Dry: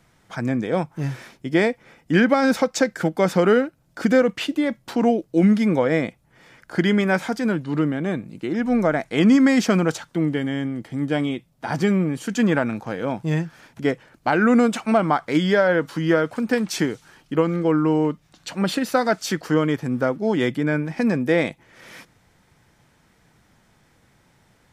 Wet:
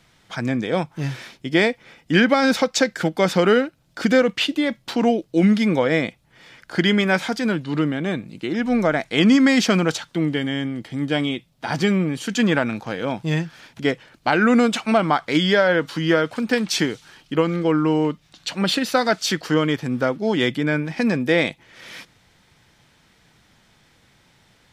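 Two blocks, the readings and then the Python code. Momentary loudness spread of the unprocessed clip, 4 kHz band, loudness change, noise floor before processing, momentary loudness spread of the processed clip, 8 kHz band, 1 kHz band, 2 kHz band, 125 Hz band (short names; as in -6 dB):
10 LU, +7.5 dB, +1.0 dB, -60 dBFS, 11 LU, +3.5 dB, +1.0 dB, +3.0 dB, 0.0 dB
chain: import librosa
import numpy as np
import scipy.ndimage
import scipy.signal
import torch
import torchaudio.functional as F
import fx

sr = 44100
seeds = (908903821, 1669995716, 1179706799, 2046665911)

y = fx.peak_eq(x, sr, hz=3600.0, db=8.5, octaves=1.5)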